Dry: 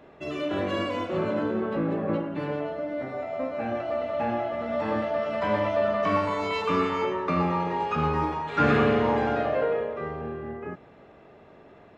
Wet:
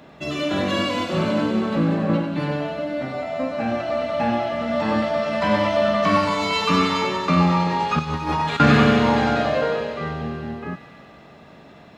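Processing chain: fifteen-band graphic EQ 100 Hz -9 dB, 400 Hz -7 dB, 4 kHz +4 dB; 7.99–8.60 s: compressor with a negative ratio -31 dBFS, ratio -0.5; high-pass 76 Hz; tone controls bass +8 dB, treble +7 dB; on a send: feedback echo behind a high-pass 94 ms, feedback 81%, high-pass 2.7 kHz, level -6 dB; on the sum: trim +6 dB

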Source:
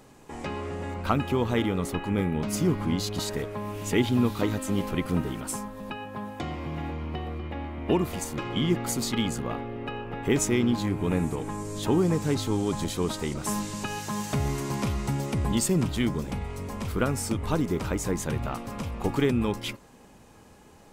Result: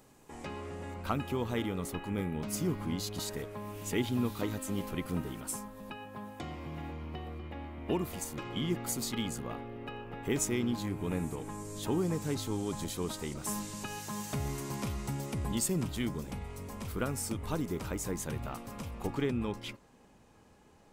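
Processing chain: treble shelf 8.4 kHz +8.5 dB, from 19.07 s -6 dB; trim -8 dB

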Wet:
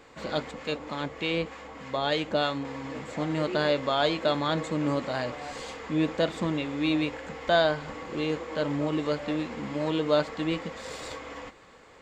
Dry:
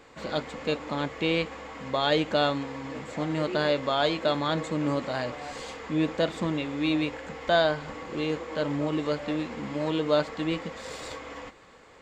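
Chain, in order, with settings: 0.51–2.65 s: harmonic tremolo 3.3 Hz, depth 50%, crossover 910 Hz

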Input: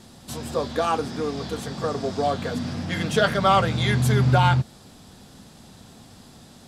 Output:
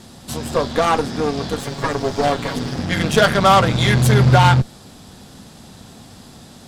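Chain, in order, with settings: 1.59–2.79 s: comb filter that takes the minimum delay 7.2 ms; Chebyshev shaper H 8 -21 dB, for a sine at -8 dBFS; trim +6 dB

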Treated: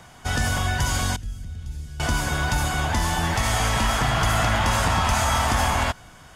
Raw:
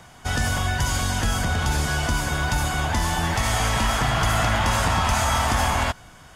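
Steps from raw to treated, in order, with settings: 1.16–2.00 s: amplifier tone stack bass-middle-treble 10-0-1

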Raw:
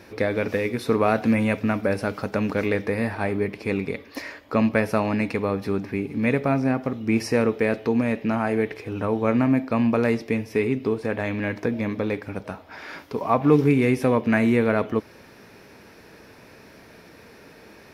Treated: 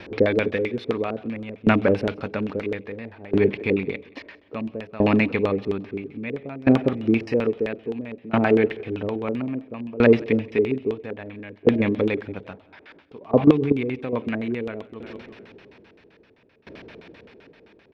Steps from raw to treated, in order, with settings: LFO low-pass square 7.7 Hz 420–3200 Hz; feedback delay 176 ms, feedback 55%, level -23.5 dB; 13.44–14.13 s: level held to a coarse grid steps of 12 dB; sawtooth tremolo in dB decaying 0.6 Hz, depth 22 dB; trim +5.5 dB

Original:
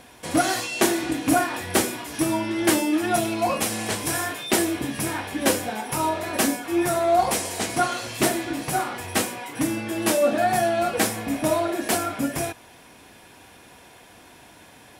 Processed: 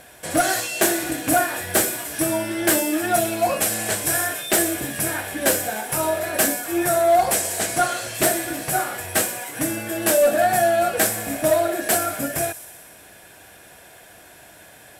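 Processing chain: graphic EQ with 31 bands 250 Hz -7 dB, 630 Hz +7 dB, 1 kHz -5 dB, 1.6 kHz +7 dB, 8 kHz +7 dB, 12.5 kHz +11 dB; hard clipper -11 dBFS, distortion -20 dB; feedback echo behind a high-pass 61 ms, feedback 78%, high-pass 4.7 kHz, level -11.5 dB

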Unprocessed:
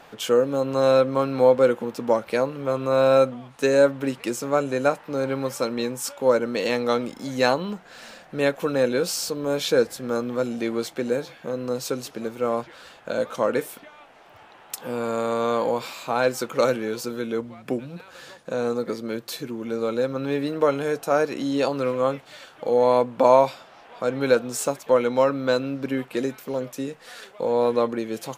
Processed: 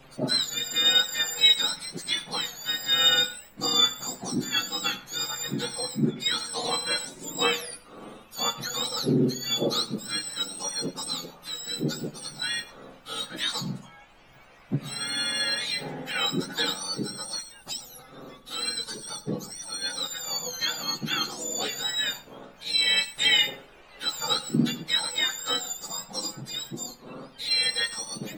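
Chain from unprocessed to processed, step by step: spectrum inverted on a logarithmic axis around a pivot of 1.4 kHz; flange 0.11 Hz, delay 7.5 ms, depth 9 ms, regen +34%; added noise brown -64 dBFS; reverberation RT60 0.35 s, pre-delay 80 ms, DRR 16.5 dB; trim +2 dB

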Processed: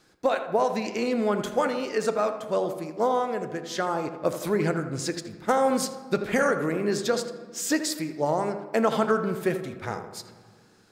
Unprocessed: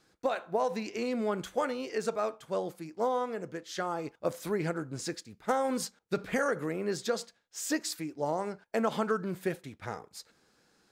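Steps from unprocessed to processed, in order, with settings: filtered feedback delay 82 ms, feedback 52%, low-pass 2 kHz, level -9.5 dB; on a send at -13.5 dB: reverberation RT60 2.1 s, pre-delay 3 ms; on the sum: trim +6 dB

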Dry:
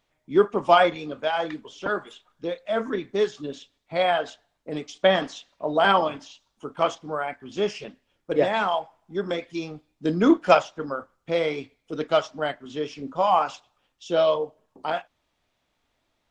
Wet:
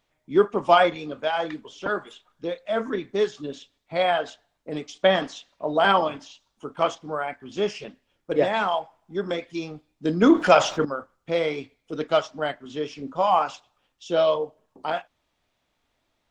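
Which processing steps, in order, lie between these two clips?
10.22–10.85 s: level flattener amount 50%

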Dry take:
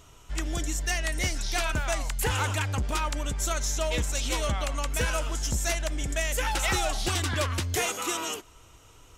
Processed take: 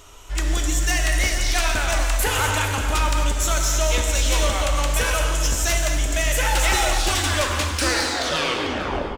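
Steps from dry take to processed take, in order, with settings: tape stop on the ending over 1.79 s; peaking EQ 140 Hz -13 dB 1.3 oct; saturation -24 dBFS, distortion -17 dB; delay 445 ms -13 dB; gated-style reverb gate 290 ms flat, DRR 2.5 dB; trim +8 dB

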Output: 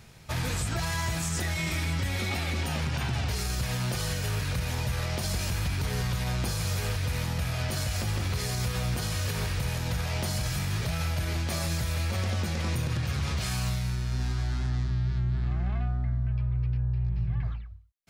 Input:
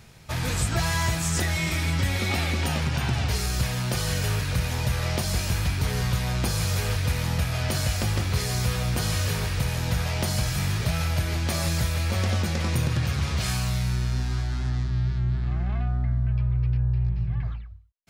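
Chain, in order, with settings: peak limiter -19.5 dBFS, peak gain reduction 6.5 dB; trim -1.5 dB

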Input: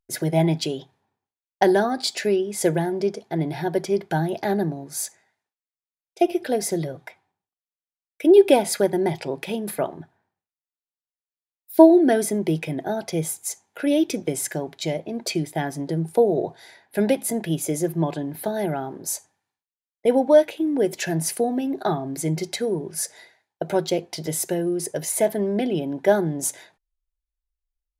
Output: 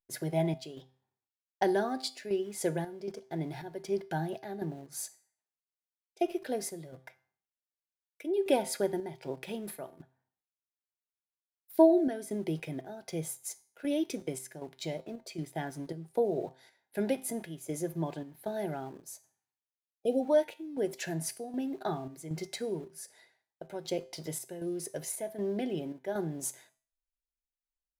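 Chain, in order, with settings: spectral selection erased 19.92–20.23 s, 780–2400 Hz; in parallel at -7.5 dB: small samples zeroed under -35 dBFS; on the sum: square tremolo 1.3 Hz, depth 60%, duty 70%; feedback comb 130 Hz, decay 0.45 s, harmonics all, mix 50%; trim -8.5 dB

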